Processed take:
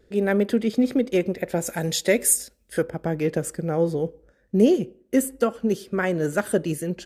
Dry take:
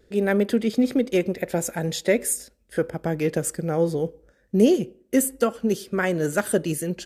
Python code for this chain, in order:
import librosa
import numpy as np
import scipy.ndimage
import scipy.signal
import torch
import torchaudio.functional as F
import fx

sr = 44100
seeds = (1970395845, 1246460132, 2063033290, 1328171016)

y = fx.high_shelf(x, sr, hz=3100.0, db=fx.steps((0.0, -3.5), (1.66, 6.5), (2.82, -5.5)))